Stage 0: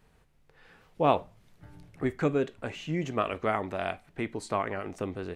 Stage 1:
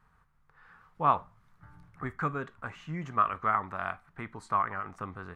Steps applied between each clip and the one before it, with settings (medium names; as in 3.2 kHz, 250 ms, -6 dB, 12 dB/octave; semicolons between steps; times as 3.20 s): FFT filter 170 Hz 0 dB, 330 Hz -9 dB, 610 Hz -7 dB, 1.2 kHz +12 dB, 2.7 kHz -7 dB; trim -3.5 dB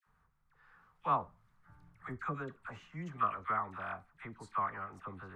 phase dispersion lows, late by 68 ms, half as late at 1.1 kHz; trim -6.5 dB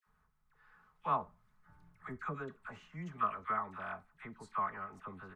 comb 4.7 ms, depth 36%; trim -2 dB